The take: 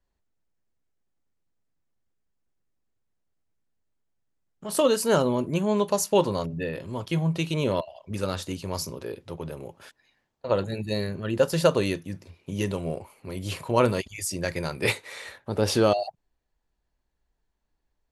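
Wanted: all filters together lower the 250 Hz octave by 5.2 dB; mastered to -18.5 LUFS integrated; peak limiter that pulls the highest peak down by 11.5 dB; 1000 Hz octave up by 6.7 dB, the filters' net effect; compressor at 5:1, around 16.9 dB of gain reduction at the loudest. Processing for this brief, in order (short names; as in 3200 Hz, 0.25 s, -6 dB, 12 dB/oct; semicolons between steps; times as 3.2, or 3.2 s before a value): bell 250 Hz -8.5 dB; bell 1000 Hz +8.5 dB; compressor 5:1, threshold -33 dBFS; gain +22 dB; limiter -7 dBFS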